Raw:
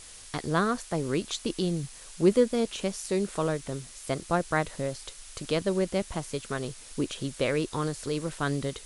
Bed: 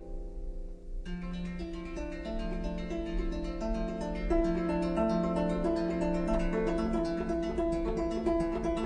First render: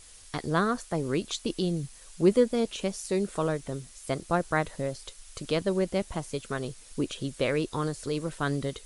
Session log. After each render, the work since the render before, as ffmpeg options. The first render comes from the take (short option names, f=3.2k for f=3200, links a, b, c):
-af "afftdn=nr=6:nf=-47"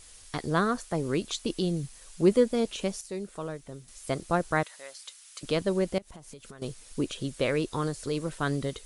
-filter_complex "[0:a]asettb=1/sr,asplit=3[a][b][c];[a]atrim=end=4.634[d];[b]atrim=start=4.63:end=5.43,asetpts=PTS-STARTPTS,afade=t=in:d=0.004:c=qsin,afade=t=out:st=0.796:d=0.004:c=qsin,highpass=1.2k[e];[c]atrim=start=5.426[f];[d][e]acrossfade=d=0.004:c1=hsin:c2=qsin[g];[g][f]acrossfade=d=0.004:c1=qsin:c2=hsin,asettb=1/sr,asplit=3[h][i][j];[h]atrim=end=5.984[k];[i]atrim=start=5.98:end=6.62,asetpts=PTS-STARTPTS,afade=t=in:d=0.004:c=qsin,afade=t=out:st=0.636:d=0.004:c=qsin,acompressor=threshold=-42dB:ratio=12:attack=3.2:release=140:knee=1:detection=peak[l];[j]atrim=start=6.616[m];[k][l]acrossfade=d=0.004:c1=hsin:c2=qsin[n];[n][m]acrossfade=d=0.004:c1=qsin:c2=hsin,asplit=3[o][p][q];[o]atrim=end=3.012[r];[p]atrim=start=3.008:end=3.882,asetpts=PTS-STARTPTS,volume=-8dB[s];[q]atrim=start=3.878[t];[r][s]acrossfade=d=0.004:c1=hsin:c2=hsin[u];[u][t]acrossfade=d=0.004:c1=hsin:c2=hsin"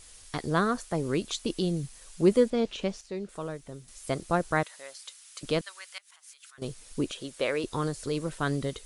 -filter_complex "[0:a]asettb=1/sr,asplit=3[a][b][c];[a]atrim=end=2.504[d];[b]atrim=start=2.5:end=3.29,asetpts=PTS-STARTPTS,afade=t=in:d=0.004:c=qsin,afade=t=out:st=0.786:d=0.004:c=qsin,lowpass=4.8k[e];[c]atrim=start=3.286[f];[d][e]acrossfade=d=0.004:c1=hsin:c2=qsin[g];[g][f]acrossfade=d=0.004:c1=qsin:c2=hsin,asettb=1/sr,asplit=3[h][i][j];[h]atrim=end=5.614[k];[i]atrim=start=5.61:end=6.58,asetpts=PTS-STARTPTS,afade=t=in:d=0.004:c=qsin,afade=t=out:st=0.966:d=0.004:c=qsin,highpass=f=1.3k:w=0.5412,highpass=f=1.3k:w=1.3066[l];[j]atrim=start=6.576[m];[k][l]acrossfade=d=0.004:c1=hsin:c2=qsin[n];[n][m]acrossfade=d=0.004:c1=qsin:c2=hsin,asettb=1/sr,asplit=3[o][p][q];[o]atrim=end=7.114[r];[p]atrim=start=7.11:end=7.64,asetpts=PTS-STARTPTS,afade=t=in:d=0.004:c=qsin,afade=t=out:st=0.526:d=0.004:c=qsin,bass=f=250:g=-14,treble=f=4k:g=-1[s];[q]atrim=start=7.636[t];[r][s]acrossfade=d=0.004:c1=hsin:c2=qsin[u];[u][t]acrossfade=d=0.004:c1=qsin:c2=hsin"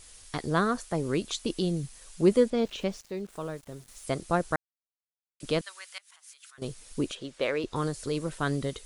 -filter_complex "[0:a]asettb=1/sr,asplit=3[a][b][c];[a]atrim=end=2.584[d];[b]atrim=start=2.58:end=4.04,asetpts=PTS-STARTPTS,afade=t=in:d=0.004:c=qsin,afade=t=out:st=1.456:d=0.004:c=qsin,aeval=exprs='val(0)*gte(abs(val(0)),0.00282)':c=same[e];[c]atrim=start=4.036[f];[d][e]acrossfade=d=0.004:c1=hsin:c2=qsin[g];[g][f]acrossfade=d=0.004:c1=qsin:c2=hsin,asettb=1/sr,asplit=3[h][i][j];[h]atrim=end=7.154[k];[i]atrim=start=7.15:end=7.76,asetpts=PTS-STARTPTS,afade=t=in:d=0.004:c=qsin,afade=t=out:st=0.606:d=0.004:c=qsin,adynamicsmooth=sensitivity=3.5:basefreq=5.7k[l];[j]atrim=start=7.756[m];[k][l]acrossfade=d=0.004:c1=hsin:c2=qsin[n];[n][m]acrossfade=d=0.004:c1=qsin:c2=hsin,asplit=3[o][p][q];[o]atrim=end=4.56,asetpts=PTS-STARTPTS,afade=t=out:st=4.556:d=0.004:c=hsin[r];[p]atrim=start=4.56:end=5.4,asetpts=PTS-STARTPTS,volume=0[s];[q]atrim=start=5.4,asetpts=PTS-STARTPTS,afade=t=in:d=0.004:c=hsin[t];[r][s][t]concat=n=3:v=0:a=1"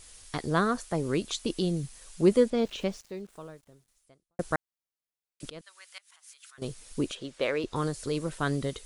-filter_complex "[0:a]asplit=3[a][b][c];[a]atrim=end=4.39,asetpts=PTS-STARTPTS,afade=t=out:st=2.87:d=1.52:c=qua[d];[b]atrim=start=4.39:end=5.5,asetpts=PTS-STARTPTS,afade=t=in:d=0.004:c=hsin,afade=t=out:st=1.106:d=0.004:c=hsin:silence=0.0630957[e];[c]atrim=start=5.5,asetpts=PTS-STARTPTS,afade=t=in:d=1.15:c=qsin:silence=0.0630957[f];[d][e][f]concat=n=3:v=0:a=1"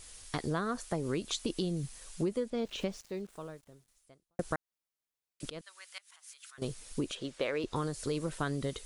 -af "acompressor=threshold=-29dB:ratio=10"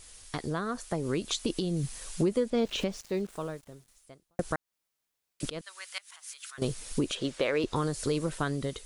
-af "dynaudnorm=f=400:g=7:m=8dB,alimiter=limit=-17dB:level=0:latency=1:release=307"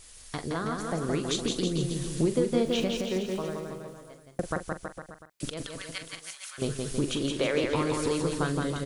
-filter_complex "[0:a]asplit=2[a][b];[b]adelay=43,volume=-11dB[c];[a][c]amix=inputs=2:normalize=0,asplit=2[d][e];[e]aecho=0:1:170|323|460.7|584.6|696.2:0.631|0.398|0.251|0.158|0.1[f];[d][f]amix=inputs=2:normalize=0"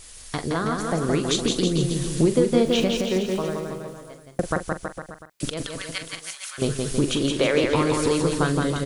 -af "volume=6.5dB"